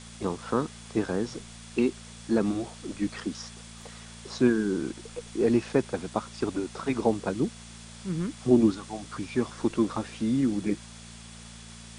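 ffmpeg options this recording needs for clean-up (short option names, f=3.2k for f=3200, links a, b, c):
-af "bandreject=f=57.1:t=h:w=4,bandreject=f=114.2:t=h:w=4,bandreject=f=171.3:t=h:w=4,bandreject=f=228.4:t=h:w=4,bandreject=f=3.4k:w=30,afftdn=nr=26:nf=-46"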